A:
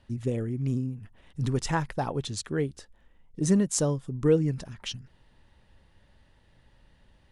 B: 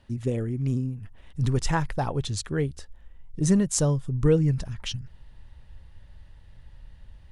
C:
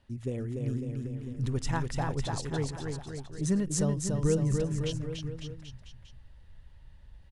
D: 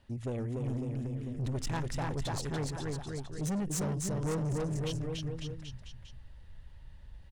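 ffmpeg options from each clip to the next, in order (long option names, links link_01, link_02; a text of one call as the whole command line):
ffmpeg -i in.wav -af "asubboost=boost=4.5:cutoff=120,volume=2dB" out.wav
ffmpeg -i in.wav -af "aecho=1:1:290|551|785.9|997.3|1188:0.631|0.398|0.251|0.158|0.1,volume=-7dB" out.wav
ffmpeg -i in.wav -af "asoftclip=type=tanh:threshold=-32dB,volume=2dB" out.wav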